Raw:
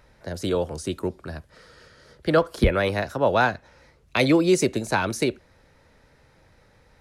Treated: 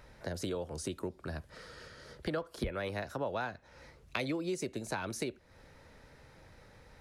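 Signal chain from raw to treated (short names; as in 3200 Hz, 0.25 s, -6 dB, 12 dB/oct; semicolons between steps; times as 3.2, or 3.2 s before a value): compressor 4:1, threshold -36 dBFS, peak gain reduction 18.5 dB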